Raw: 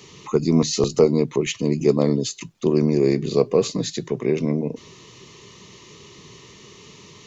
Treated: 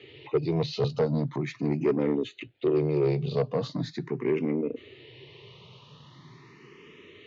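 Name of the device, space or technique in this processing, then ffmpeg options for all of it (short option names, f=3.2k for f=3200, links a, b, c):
barber-pole phaser into a guitar amplifier: -filter_complex "[0:a]asplit=2[a][b];[b]afreqshift=0.41[c];[a][c]amix=inputs=2:normalize=1,asoftclip=type=tanh:threshold=-16.5dB,highpass=100,equalizer=f=130:t=q:w=4:g=5,equalizer=f=200:t=q:w=4:g=-9,equalizer=f=1.1k:t=q:w=4:g=-5,lowpass=f=3.5k:w=0.5412,lowpass=f=3.5k:w=1.3066"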